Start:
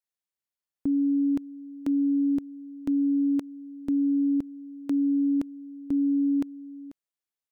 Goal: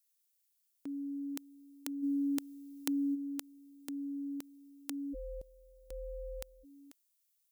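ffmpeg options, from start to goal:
-filter_complex "[0:a]aderivative,asplit=3[a][b][c];[a]afade=t=out:st=2.02:d=0.02[d];[b]acontrast=87,afade=t=in:st=2.02:d=0.02,afade=t=out:st=3.14:d=0.02[e];[c]afade=t=in:st=3.14:d=0.02[f];[d][e][f]amix=inputs=3:normalize=0,asplit=3[g][h][i];[g]afade=t=out:st=5.13:d=0.02[j];[h]aeval=exprs='val(0)*sin(2*PI*240*n/s)':c=same,afade=t=in:st=5.13:d=0.02,afade=t=out:st=6.63:d=0.02[k];[i]afade=t=in:st=6.63:d=0.02[l];[j][k][l]amix=inputs=3:normalize=0,volume=12dB"

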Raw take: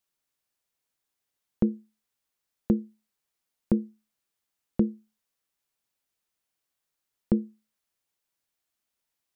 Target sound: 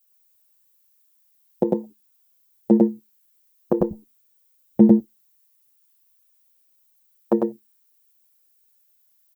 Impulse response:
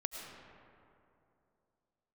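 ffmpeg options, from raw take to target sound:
-filter_complex "[0:a]asetnsamples=n=441:p=0,asendcmd='3.81 highpass f 89;4.89 highpass f 490',highpass=250,afwtdn=0.00794,aemphasis=mode=production:type=bsi,aecho=1:1:100:0.668,alimiter=level_in=21.5dB:limit=-1dB:release=50:level=0:latency=1,asplit=2[a][b];[b]adelay=7.3,afreqshift=0.46[c];[a][c]amix=inputs=2:normalize=1,volume=-1dB"

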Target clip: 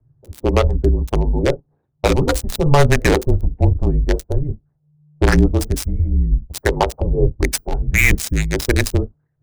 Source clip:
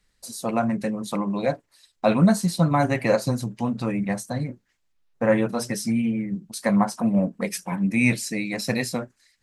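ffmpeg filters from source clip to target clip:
-filter_complex "[0:a]afftfilt=real='re*lt(hypot(re,im),0.891)':imag='im*lt(hypot(re,im),0.891)':win_size=1024:overlap=0.75,aphaser=in_gain=1:out_gain=1:delay=2.1:decay=0.24:speed=1.1:type=triangular,acrossover=split=800[a][b];[b]acrusher=bits=3:mix=0:aa=0.5[c];[a][c]amix=inputs=2:normalize=0,afreqshift=-150,alimiter=level_in=12dB:limit=-1dB:release=50:level=0:latency=1,volume=-1dB"

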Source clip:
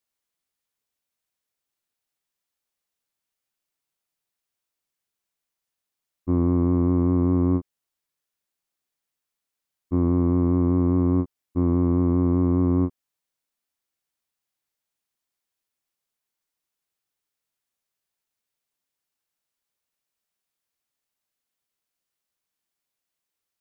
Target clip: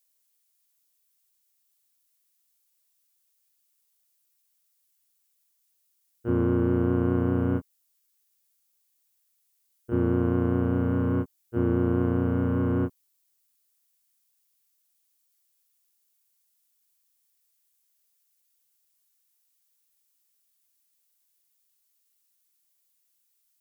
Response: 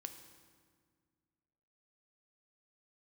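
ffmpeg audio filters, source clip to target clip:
-filter_complex "[0:a]asplit=2[a][b];[b]asetrate=58866,aresample=44100,atempo=0.749154,volume=-2dB[c];[a][c]amix=inputs=2:normalize=0,crystalizer=i=5:c=0,volume=-6dB"

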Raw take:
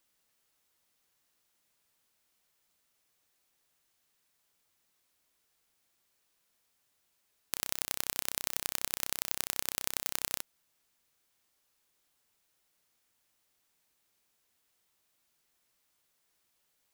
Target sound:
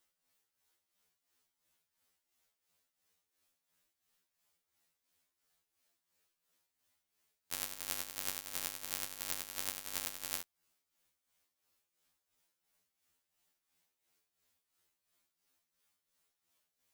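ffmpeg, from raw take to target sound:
-af "tremolo=f=2.9:d=0.69,afftfilt=real='re*2*eq(mod(b,4),0)':imag='im*2*eq(mod(b,4),0)':win_size=2048:overlap=0.75"

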